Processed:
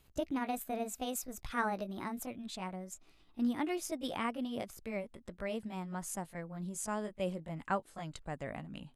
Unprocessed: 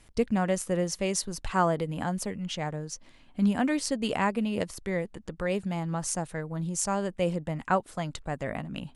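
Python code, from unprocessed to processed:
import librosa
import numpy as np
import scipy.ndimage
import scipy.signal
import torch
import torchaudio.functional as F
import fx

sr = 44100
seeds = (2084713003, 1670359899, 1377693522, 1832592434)

y = fx.pitch_glide(x, sr, semitones=5.0, runs='ending unshifted')
y = fx.notch(y, sr, hz=5600.0, q=19.0)
y = y * librosa.db_to_amplitude(-8.0)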